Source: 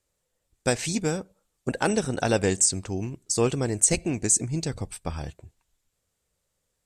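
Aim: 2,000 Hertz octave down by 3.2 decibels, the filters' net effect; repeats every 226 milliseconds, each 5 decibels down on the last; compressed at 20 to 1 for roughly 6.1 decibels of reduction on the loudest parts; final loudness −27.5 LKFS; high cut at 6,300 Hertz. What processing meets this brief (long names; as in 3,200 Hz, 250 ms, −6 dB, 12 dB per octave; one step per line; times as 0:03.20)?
low-pass filter 6,300 Hz
parametric band 2,000 Hz −4.5 dB
downward compressor 20 to 1, threshold −24 dBFS
repeating echo 226 ms, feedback 56%, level −5 dB
level +2.5 dB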